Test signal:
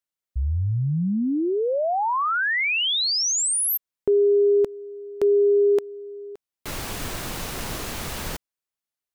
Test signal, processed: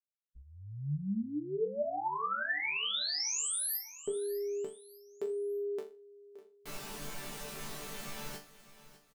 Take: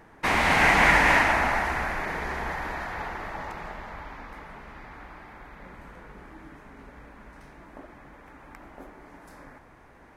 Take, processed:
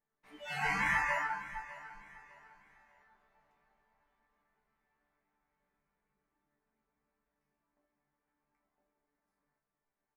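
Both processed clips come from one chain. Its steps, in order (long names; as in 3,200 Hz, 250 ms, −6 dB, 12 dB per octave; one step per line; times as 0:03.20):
resonators tuned to a chord D3 sus4, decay 0.29 s
noise reduction from a noise print of the clip's start 25 dB
on a send: repeating echo 602 ms, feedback 34%, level −16 dB
on the sum: level +2.5 dB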